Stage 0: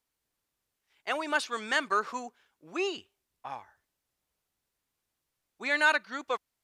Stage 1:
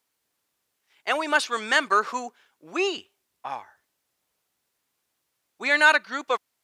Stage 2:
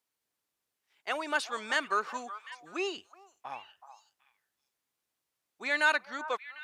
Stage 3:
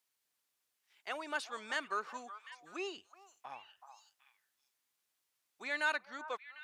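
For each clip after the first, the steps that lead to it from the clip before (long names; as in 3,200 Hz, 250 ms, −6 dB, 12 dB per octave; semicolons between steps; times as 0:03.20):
high-pass filter 230 Hz 6 dB per octave; level +7 dB
echo through a band-pass that steps 375 ms, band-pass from 930 Hz, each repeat 1.4 octaves, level −11 dB; level −8.5 dB
one half of a high-frequency compander encoder only; level −7.5 dB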